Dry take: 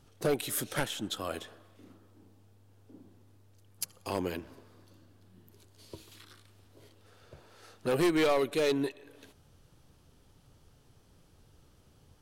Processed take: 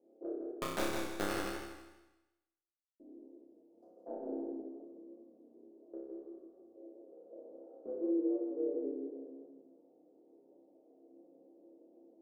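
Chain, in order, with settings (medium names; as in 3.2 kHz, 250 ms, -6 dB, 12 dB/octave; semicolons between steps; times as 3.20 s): elliptic band-pass 270–660 Hz, stop band 60 dB; compression 16:1, threshold -44 dBFS, peak gain reduction 20 dB; 0.47–3.00 s: companded quantiser 2-bit; chorus voices 6, 0.94 Hz, delay 12 ms, depth 3 ms; flutter echo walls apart 5.1 m, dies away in 0.93 s; reverberation RT60 0.45 s, pre-delay 4 ms, DRR 3 dB; modulated delay 162 ms, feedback 30%, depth 62 cents, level -4.5 dB; trim +3 dB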